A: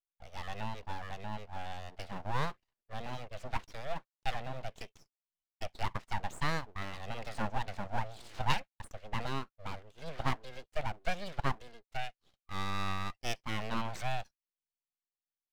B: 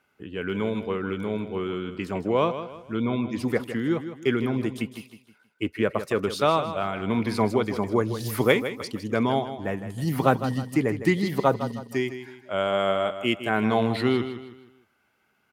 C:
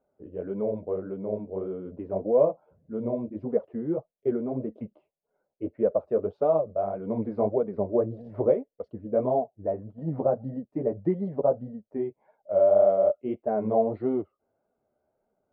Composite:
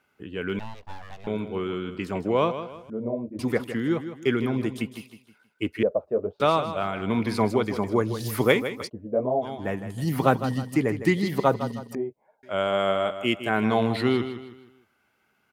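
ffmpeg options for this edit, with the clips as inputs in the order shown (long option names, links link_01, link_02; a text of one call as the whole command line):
ffmpeg -i take0.wav -i take1.wav -i take2.wav -filter_complex "[2:a]asplit=4[link_01][link_02][link_03][link_04];[1:a]asplit=6[link_05][link_06][link_07][link_08][link_09][link_10];[link_05]atrim=end=0.592[link_11];[0:a]atrim=start=0.588:end=1.272[link_12];[link_06]atrim=start=1.268:end=2.902[link_13];[link_01]atrim=start=2.898:end=3.392[link_14];[link_07]atrim=start=3.388:end=5.832[link_15];[link_02]atrim=start=5.828:end=6.402[link_16];[link_08]atrim=start=6.398:end=8.9[link_17];[link_03]atrim=start=8.86:end=9.45[link_18];[link_09]atrim=start=9.41:end=11.952[link_19];[link_04]atrim=start=11.948:end=12.432[link_20];[link_10]atrim=start=12.428[link_21];[link_11][link_12]acrossfade=duration=0.004:curve1=hsin:curve2=hsin[link_22];[link_22][link_13]acrossfade=duration=0.004:curve1=hsin:curve2=hsin[link_23];[link_23][link_14]acrossfade=duration=0.004:curve1=hsin:curve2=hsin[link_24];[link_24][link_15]acrossfade=duration=0.004:curve1=hsin:curve2=hsin[link_25];[link_25][link_16]acrossfade=duration=0.004:curve1=hsin:curve2=hsin[link_26];[link_26][link_17]acrossfade=duration=0.004:curve1=hsin:curve2=hsin[link_27];[link_27][link_18]acrossfade=duration=0.04:curve1=tri:curve2=tri[link_28];[link_28][link_19]acrossfade=duration=0.04:curve1=tri:curve2=tri[link_29];[link_29][link_20]acrossfade=duration=0.004:curve1=hsin:curve2=hsin[link_30];[link_30][link_21]acrossfade=duration=0.004:curve1=hsin:curve2=hsin" out.wav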